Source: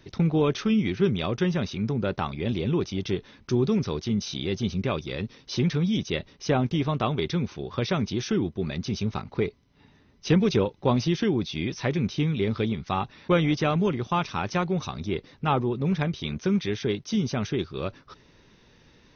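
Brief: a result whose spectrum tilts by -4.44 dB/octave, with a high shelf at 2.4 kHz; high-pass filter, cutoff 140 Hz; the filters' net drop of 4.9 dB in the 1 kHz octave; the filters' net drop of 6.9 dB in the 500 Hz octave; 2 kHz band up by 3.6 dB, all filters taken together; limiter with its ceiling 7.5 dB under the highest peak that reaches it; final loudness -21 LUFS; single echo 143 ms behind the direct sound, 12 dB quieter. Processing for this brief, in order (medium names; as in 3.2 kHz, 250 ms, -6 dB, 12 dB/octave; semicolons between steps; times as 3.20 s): high-pass 140 Hz; peaking EQ 500 Hz -8.5 dB; peaking EQ 1 kHz -6 dB; peaking EQ 2 kHz +4 dB; treble shelf 2.4 kHz +4.5 dB; peak limiter -17.5 dBFS; delay 143 ms -12 dB; trim +8.5 dB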